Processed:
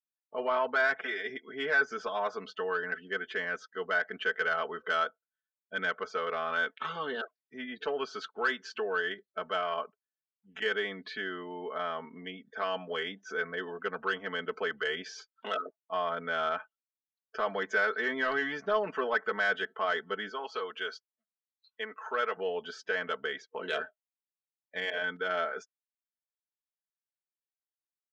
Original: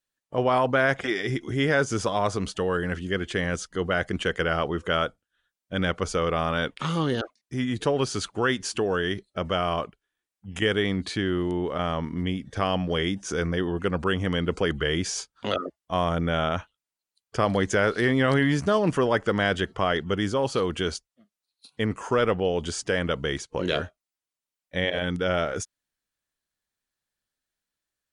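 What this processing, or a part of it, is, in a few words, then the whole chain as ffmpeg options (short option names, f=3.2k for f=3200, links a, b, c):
intercom: -filter_complex "[0:a]asettb=1/sr,asplit=3[a][b][c];[a]atrim=end=20.294[d];[b]atrim=start=20.29:end=22.37,asetpts=PTS-STARTPTS,afade=t=in:d=0.004:c=qsin,afade=t=out:st=2.076:d=0.004:c=qsin,highpass=f=560:p=1[e];[c]atrim=start=22.366[f];[d][e]acrossfade=d=0.004:c1=hsin:c2=qsin[g];[g][f]acrossfade=d=0.004:c1=qsin:c2=hsin,afftdn=nr=20:nf=-44,highpass=470,lowpass=3.8k,lowpass=f=6.1k:w=0.5412,lowpass=f=6.1k:w=1.3066,equalizer=f=1.5k:t=o:w=0.43:g=7,asoftclip=type=tanh:threshold=-11.5dB,aecho=1:1:4.6:0.87,volume=-8dB"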